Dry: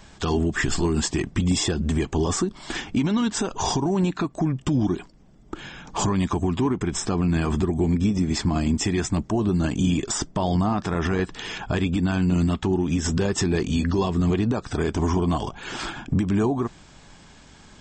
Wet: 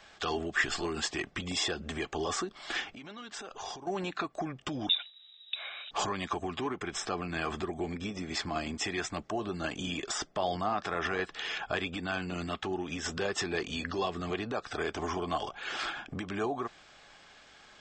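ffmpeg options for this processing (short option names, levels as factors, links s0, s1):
-filter_complex "[0:a]asettb=1/sr,asplit=3[s0][s1][s2];[s0]atrim=end=2.864[s3];[s1]atrim=start=2.86:end=3.87,asetpts=PTS-STARTPTS,afade=t=in:d=0.004:c=qsin,afade=t=out:st=1.006:d=0.004:c=qsin,acompressor=threshold=0.0251:ratio=4:attack=3.2:release=140:knee=1:detection=peak[s4];[s2]atrim=start=3.866[s5];[s3][s4]acrossfade=d=0.004:c1=hsin:c2=qsin[s6];[s6][s5]acrossfade=d=0.004:c1=qsin:c2=hsin,asettb=1/sr,asplit=3[s7][s8][s9];[s7]atrim=end=4.894[s10];[s8]atrim=start=4.89:end=5.91,asetpts=PTS-STARTPTS,afade=t=in:d=0.004:c=qsin,afade=t=out:st=1.016:d=0.004:c=qsin,lowpass=f=3300:t=q:w=0.5098,lowpass=f=3300:t=q:w=0.6013,lowpass=f=3300:t=q:w=0.9,lowpass=f=3300:t=q:w=2.563,afreqshift=-3900[s11];[s9]atrim=start=5.906[s12];[s10][s11]acrossfade=d=0.004:c1=hsin:c2=qsin[s13];[s13][s12]acrossfade=d=0.004:c1=qsin:c2=hsin,acrossover=split=470 5200:gain=0.126 1 0.224[s14][s15][s16];[s14][s15][s16]amix=inputs=3:normalize=0,bandreject=f=950:w=5.4,volume=0.841"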